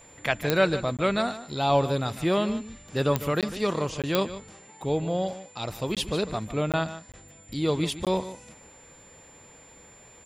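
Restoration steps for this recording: de-click; notch 7200 Hz, Q 30; interpolate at 0.97/3.41/4.02/5.95/6.72/7.12/8.05, 17 ms; inverse comb 0.15 s -13.5 dB

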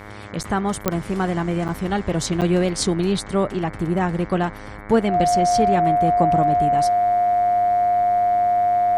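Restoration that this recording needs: de-click; de-hum 103.1 Hz, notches 22; notch 710 Hz, Q 30; interpolate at 0.43/0.85/1.68/2.41, 8.2 ms

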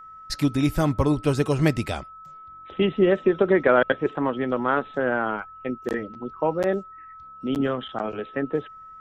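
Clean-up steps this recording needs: notch 1300 Hz, Q 30

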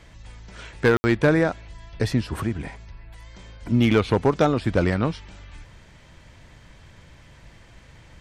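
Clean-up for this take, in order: clip repair -10.5 dBFS; room tone fill 0.97–1.04

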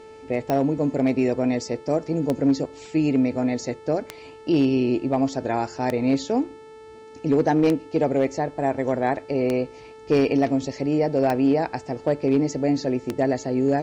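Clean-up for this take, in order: clip repair -12 dBFS; de-click; de-hum 439.2 Hz, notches 23

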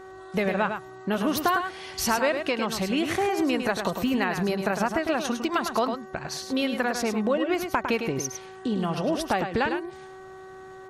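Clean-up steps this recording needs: clip repair -12.5 dBFS; de-hum 378.4 Hz, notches 5; inverse comb 0.104 s -7 dB

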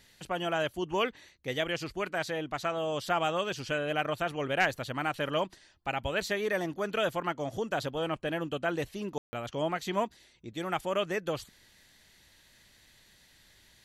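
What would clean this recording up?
room tone fill 9.18–9.33

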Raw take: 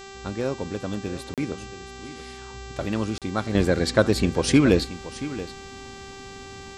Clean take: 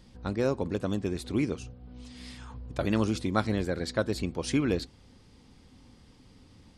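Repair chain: de-hum 391.3 Hz, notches 20; interpolate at 1.34/3.18, 37 ms; inverse comb 0.678 s -14.5 dB; gain 0 dB, from 3.55 s -9.5 dB

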